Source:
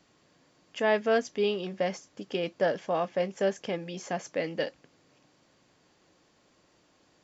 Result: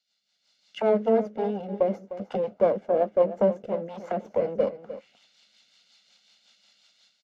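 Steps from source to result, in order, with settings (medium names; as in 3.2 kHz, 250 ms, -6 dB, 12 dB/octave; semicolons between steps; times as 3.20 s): comb filter that takes the minimum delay 1.4 ms; peaking EQ 210 Hz +14.5 dB 0.43 oct; level rider gain up to 16.5 dB; auto-wah 450–4300 Hz, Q 2.4, down, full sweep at -18.5 dBFS; rotary cabinet horn 5.5 Hz; delay 304 ms -13.5 dB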